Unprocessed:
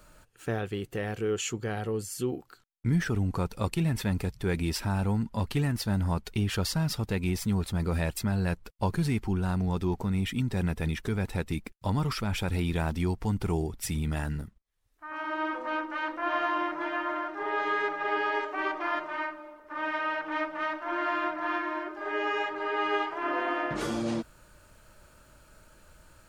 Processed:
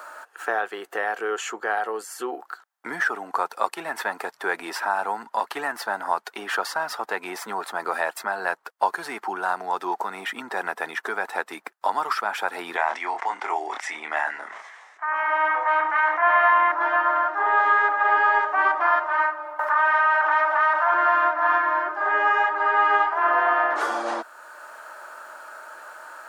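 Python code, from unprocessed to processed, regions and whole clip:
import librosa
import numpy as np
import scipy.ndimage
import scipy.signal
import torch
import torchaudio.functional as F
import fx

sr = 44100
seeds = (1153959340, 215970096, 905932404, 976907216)

y = fx.chain(x, sr, fx.cabinet(low_hz=440.0, low_slope=12, high_hz=7100.0, hz=(470.0, 1400.0, 2100.0, 4500.0), db=(-4, -4, 10, -6)),
    fx.doubler(ms=26.0, db=-8),
    fx.sustainer(db_per_s=48.0), at=(12.76, 16.72))
y = fx.chain(y, sr, fx.highpass(hz=550.0, slope=12),
    fx.env_flatten(amount_pct=70), at=(19.59, 20.94))
y = scipy.signal.sosfilt(scipy.signal.butter(4, 380.0, 'highpass', fs=sr, output='sos'), y)
y = fx.band_shelf(y, sr, hz=1100.0, db=12.5, octaves=1.7)
y = fx.band_squash(y, sr, depth_pct=40)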